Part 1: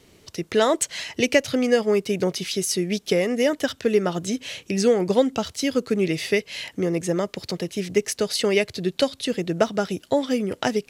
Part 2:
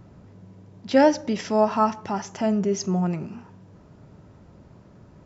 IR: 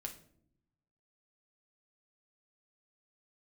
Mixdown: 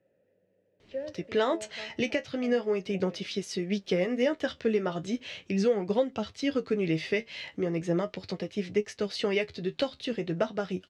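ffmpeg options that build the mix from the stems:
-filter_complex "[0:a]lowpass=3900,flanger=delay=9.4:depth=4:regen=49:speed=0.38:shape=sinusoidal,adelay=800,volume=0.841[s0];[1:a]asplit=3[s1][s2][s3];[s1]bandpass=f=530:t=q:w=8,volume=1[s4];[s2]bandpass=f=1840:t=q:w=8,volume=0.501[s5];[s3]bandpass=f=2480:t=q:w=8,volume=0.355[s6];[s4][s5][s6]amix=inputs=3:normalize=0,acrossover=split=310[s7][s8];[s8]acompressor=threshold=0.0126:ratio=2[s9];[s7][s9]amix=inputs=2:normalize=0,volume=0.531[s10];[s0][s10]amix=inputs=2:normalize=0,alimiter=limit=0.158:level=0:latency=1:release=443"

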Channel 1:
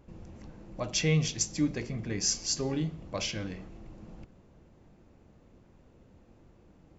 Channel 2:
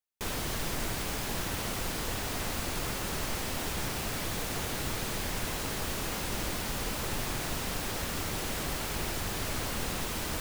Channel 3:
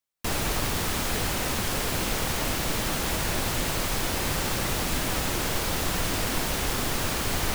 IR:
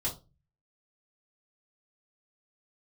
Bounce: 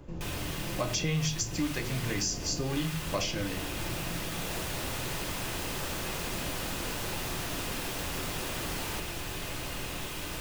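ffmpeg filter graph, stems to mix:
-filter_complex "[0:a]acontrast=71,volume=0.841,asplit=3[s0][s1][s2];[s1]volume=0.422[s3];[1:a]equalizer=f=2600:t=o:w=0.59:g=6,volume=0.422,asplit=2[s4][s5];[s5]volume=0.501[s6];[2:a]adelay=1450,volume=0.335[s7];[s2]apad=whole_len=396829[s8];[s7][s8]sidechaincompress=threshold=0.01:ratio=8:attack=16:release=551[s9];[3:a]atrim=start_sample=2205[s10];[s3][s6]amix=inputs=2:normalize=0[s11];[s11][s10]afir=irnorm=-1:irlink=0[s12];[s0][s4][s9][s12]amix=inputs=4:normalize=0,acrossover=split=87|730[s13][s14][s15];[s13]acompressor=threshold=0.01:ratio=4[s16];[s14]acompressor=threshold=0.0224:ratio=4[s17];[s15]acompressor=threshold=0.0251:ratio=4[s18];[s16][s17][s18]amix=inputs=3:normalize=0,bandreject=f=2200:w=29"

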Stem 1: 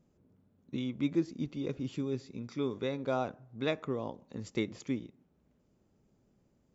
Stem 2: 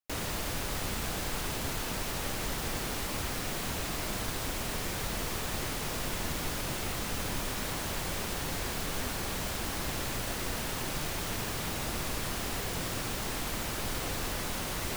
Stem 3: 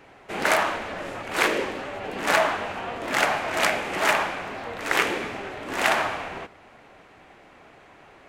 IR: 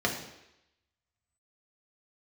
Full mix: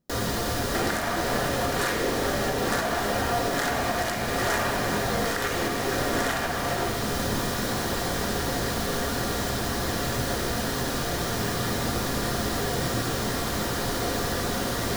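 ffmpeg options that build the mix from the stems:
-filter_complex "[0:a]volume=0.422[s0];[1:a]volume=1.12,asplit=2[s1][s2];[s2]volume=0.531[s3];[2:a]aemphasis=mode=production:type=cd,acompressor=threshold=0.0224:ratio=2.5,adelay=450,volume=1.26,asplit=2[s4][s5];[s5]volume=0.501[s6];[3:a]atrim=start_sample=2205[s7];[s3][s6]amix=inputs=2:normalize=0[s8];[s8][s7]afir=irnorm=-1:irlink=0[s9];[s0][s1][s4][s9]amix=inputs=4:normalize=0,alimiter=limit=0.178:level=0:latency=1:release=422"

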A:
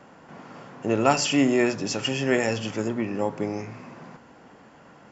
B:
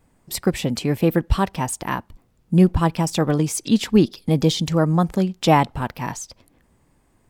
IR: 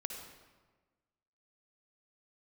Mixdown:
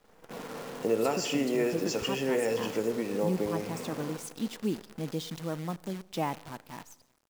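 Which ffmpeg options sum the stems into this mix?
-filter_complex "[0:a]acompressor=threshold=0.0224:ratio=2.5,equalizer=f=470:t=o:w=0.24:g=12,agate=range=0.126:threshold=0.00501:ratio=16:detection=peak,volume=0.631,asplit=2[s0][s1];[s1]volume=0.668[s2];[1:a]adelay=700,volume=0.119,asplit=2[s3][s4];[s4]volume=0.282[s5];[2:a]atrim=start_sample=2205[s6];[s2][s5]amix=inputs=2:normalize=0[s7];[s7][s6]afir=irnorm=-1:irlink=0[s8];[s0][s3][s8]amix=inputs=3:normalize=0,highpass=170,lowshelf=f=440:g=2.5,acrusher=bits=8:dc=4:mix=0:aa=0.000001"

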